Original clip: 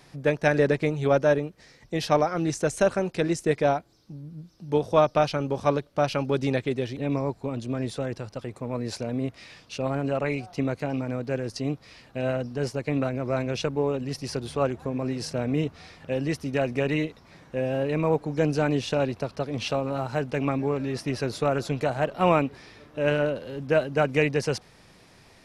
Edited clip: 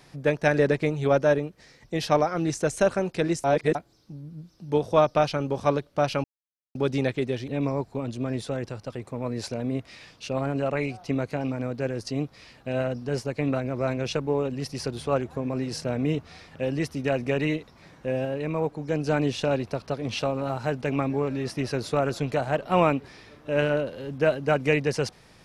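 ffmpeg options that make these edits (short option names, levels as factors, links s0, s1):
-filter_complex "[0:a]asplit=6[s0][s1][s2][s3][s4][s5];[s0]atrim=end=3.442[s6];[s1]atrim=start=3.438:end=3.752,asetpts=PTS-STARTPTS,areverse[s7];[s2]atrim=start=3.748:end=6.24,asetpts=PTS-STARTPTS,afade=t=out:st=2.488:d=0.004:c=hsin,apad=pad_dur=0.51[s8];[s3]atrim=start=6.24:end=17.742,asetpts=PTS-STARTPTS,afade=t=in:d=0.004:c=hsin[s9];[s4]atrim=start=17.738:end=18.562,asetpts=PTS-STARTPTS,volume=0.668[s10];[s5]atrim=start=18.558[s11];[s6][s7]acrossfade=d=0.004:c1=hsin:c2=hsin[s12];[s8][s9]concat=n=2:v=0:a=1[s13];[s12][s13]acrossfade=d=0.004:c1=hsin:c2=hsin[s14];[s14][s10]acrossfade=d=0.004:c1=hsin:c2=hsin[s15];[s15][s11]acrossfade=d=0.004:c1=hsin:c2=hsin"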